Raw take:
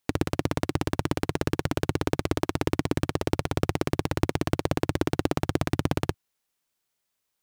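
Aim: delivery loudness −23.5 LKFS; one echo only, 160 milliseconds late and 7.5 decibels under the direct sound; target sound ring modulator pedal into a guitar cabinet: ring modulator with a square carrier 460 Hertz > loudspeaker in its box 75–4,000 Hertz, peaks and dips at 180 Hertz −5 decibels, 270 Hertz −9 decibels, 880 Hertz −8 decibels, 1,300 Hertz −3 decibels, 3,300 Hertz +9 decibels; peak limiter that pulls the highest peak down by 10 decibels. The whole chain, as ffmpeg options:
ffmpeg -i in.wav -af "alimiter=limit=-16dB:level=0:latency=1,aecho=1:1:160:0.422,aeval=exprs='val(0)*sgn(sin(2*PI*460*n/s))':channel_layout=same,highpass=75,equalizer=frequency=180:width_type=q:width=4:gain=-5,equalizer=frequency=270:width_type=q:width=4:gain=-9,equalizer=frequency=880:width_type=q:width=4:gain=-8,equalizer=frequency=1300:width_type=q:width=4:gain=-3,equalizer=frequency=3300:width_type=q:width=4:gain=9,lowpass=frequency=4000:width=0.5412,lowpass=frequency=4000:width=1.3066,volume=12dB" out.wav

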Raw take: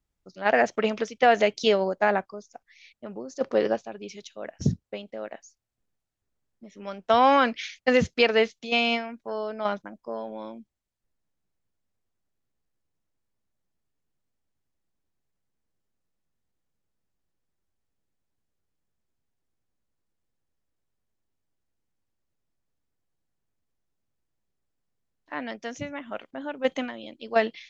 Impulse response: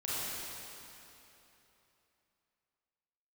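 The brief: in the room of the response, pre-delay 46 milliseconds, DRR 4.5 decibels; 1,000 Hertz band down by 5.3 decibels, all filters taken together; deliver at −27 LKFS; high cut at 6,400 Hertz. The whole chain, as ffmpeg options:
-filter_complex "[0:a]lowpass=6400,equalizer=frequency=1000:width_type=o:gain=-8,asplit=2[link_01][link_02];[1:a]atrim=start_sample=2205,adelay=46[link_03];[link_02][link_03]afir=irnorm=-1:irlink=0,volume=-10dB[link_04];[link_01][link_04]amix=inputs=2:normalize=0"

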